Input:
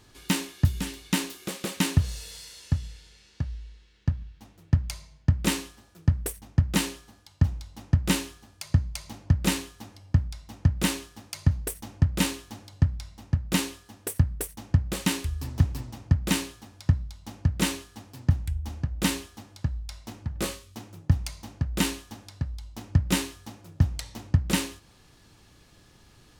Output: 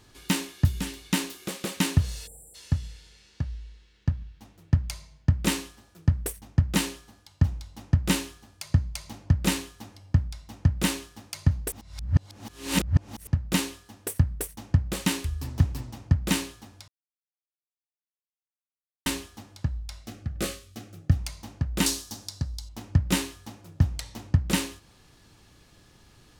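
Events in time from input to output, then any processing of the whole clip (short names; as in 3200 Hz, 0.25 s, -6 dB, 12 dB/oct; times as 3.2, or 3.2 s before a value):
2.27–2.55 spectral delete 880–7200 Hz
11.72–13.27 reverse
16.88–19.06 mute
20.02–21.18 Butterworth band-stop 950 Hz, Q 3.3
21.86–22.69 resonant high shelf 3500 Hz +10 dB, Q 1.5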